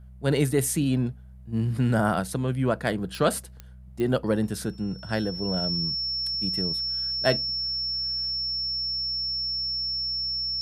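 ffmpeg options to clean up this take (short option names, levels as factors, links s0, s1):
-af "adeclick=t=4,bandreject=f=63.1:t=h:w=4,bandreject=f=126.2:t=h:w=4,bandreject=f=189.3:t=h:w=4,bandreject=f=5400:w=30"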